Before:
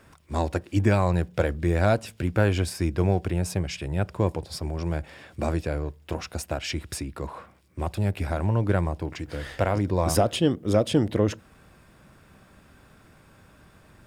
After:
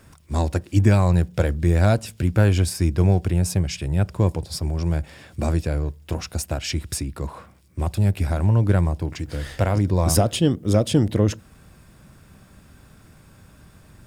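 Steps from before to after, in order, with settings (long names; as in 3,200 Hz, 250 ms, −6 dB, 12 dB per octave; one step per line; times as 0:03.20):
bass and treble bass +7 dB, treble +7 dB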